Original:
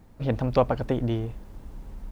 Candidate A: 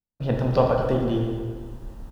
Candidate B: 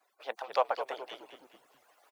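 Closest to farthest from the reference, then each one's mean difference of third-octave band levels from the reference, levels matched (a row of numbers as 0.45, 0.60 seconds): A, B; 4.0, 11.0 decibels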